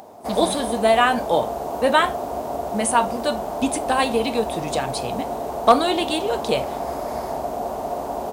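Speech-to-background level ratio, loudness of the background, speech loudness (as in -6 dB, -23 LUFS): 6.0 dB, -28.0 LUFS, -22.0 LUFS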